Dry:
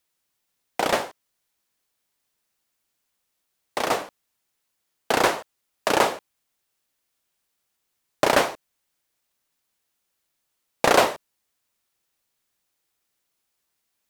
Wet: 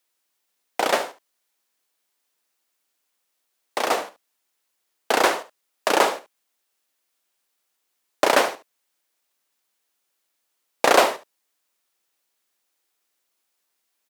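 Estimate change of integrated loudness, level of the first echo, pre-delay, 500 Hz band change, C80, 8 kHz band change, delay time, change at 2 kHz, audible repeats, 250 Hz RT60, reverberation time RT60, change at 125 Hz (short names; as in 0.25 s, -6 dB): +1.5 dB, -14.5 dB, none, +1.5 dB, none, +1.5 dB, 72 ms, +1.5 dB, 1, none, none, n/a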